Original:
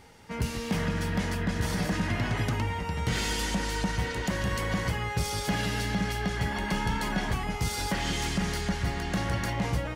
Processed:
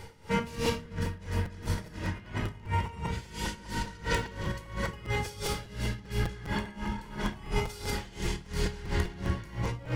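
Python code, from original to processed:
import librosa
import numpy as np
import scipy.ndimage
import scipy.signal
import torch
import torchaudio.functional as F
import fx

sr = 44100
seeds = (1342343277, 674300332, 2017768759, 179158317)

y = fx.over_compress(x, sr, threshold_db=-34.0, ratio=-0.5)
y = 10.0 ** (-22.0 / 20.0) * (np.abs((y / 10.0 ** (-22.0 / 20.0) + 3.0) % 4.0 - 2.0) - 1.0)
y = fx.room_shoebox(y, sr, seeds[0], volume_m3=2400.0, walls='furnished', distance_m=4.8)
y = fx.buffer_crackle(y, sr, first_s=0.65, period_s=0.2, block=256, kind='repeat')
y = y * 10.0 ** (-18 * (0.5 - 0.5 * np.cos(2.0 * np.pi * 2.9 * np.arange(len(y)) / sr)) / 20.0)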